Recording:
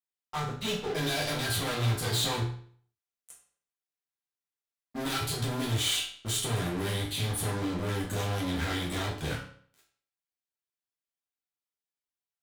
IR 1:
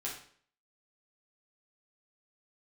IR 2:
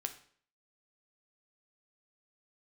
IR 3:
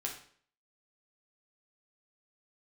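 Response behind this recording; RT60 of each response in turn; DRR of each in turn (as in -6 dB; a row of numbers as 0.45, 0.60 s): 1; 0.55, 0.55, 0.55 s; -5.0, 6.5, -1.0 dB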